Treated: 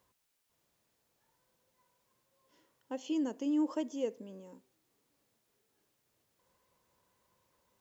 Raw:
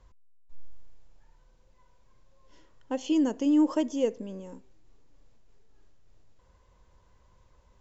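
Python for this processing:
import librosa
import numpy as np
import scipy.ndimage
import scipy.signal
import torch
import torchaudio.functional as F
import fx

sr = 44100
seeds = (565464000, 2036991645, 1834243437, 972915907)

y = scipy.signal.sosfilt(scipy.signal.butter(2, 170.0, 'highpass', fs=sr, output='sos'), x)
y = fx.quant_dither(y, sr, seeds[0], bits=12, dither='triangular')
y = y * librosa.db_to_amplitude(-8.0)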